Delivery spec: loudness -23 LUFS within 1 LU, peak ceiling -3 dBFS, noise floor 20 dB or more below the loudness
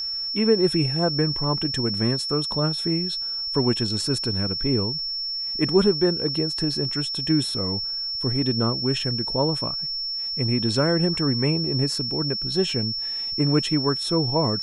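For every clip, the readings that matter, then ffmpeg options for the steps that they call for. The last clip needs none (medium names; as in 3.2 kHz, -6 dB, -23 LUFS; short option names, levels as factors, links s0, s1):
steady tone 5.4 kHz; tone level -26 dBFS; loudness -22.5 LUFS; peak level -6.5 dBFS; loudness target -23.0 LUFS
-> -af "bandreject=f=5400:w=30"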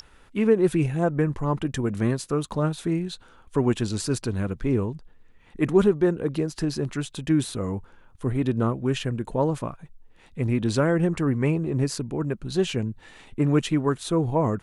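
steady tone not found; loudness -25.5 LUFS; peak level -7.0 dBFS; loudness target -23.0 LUFS
-> -af "volume=1.33"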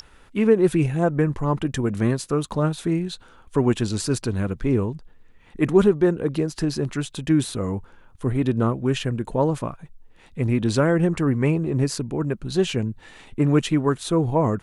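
loudness -23.0 LUFS; peak level -4.5 dBFS; noise floor -52 dBFS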